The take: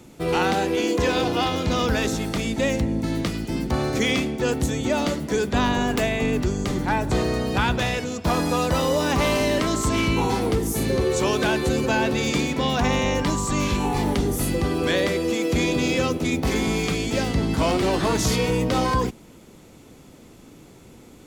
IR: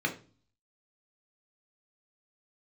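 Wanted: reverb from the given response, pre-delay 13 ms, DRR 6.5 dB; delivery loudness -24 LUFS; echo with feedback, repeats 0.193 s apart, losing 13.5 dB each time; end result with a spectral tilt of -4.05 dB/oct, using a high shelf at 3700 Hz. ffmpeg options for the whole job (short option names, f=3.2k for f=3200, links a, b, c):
-filter_complex "[0:a]highshelf=f=3.7k:g=8.5,aecho=1:1:193|386:0.211|0.0444,asplit=2[a][b];[1:a]atrim=start_sample=2205,adelay=13[c];[b][c]afir=irnorm=-1:irlink=0,volume=-14.5dB[d];[a][d]amix=inputs=2:normalize=0,volume=-4dB"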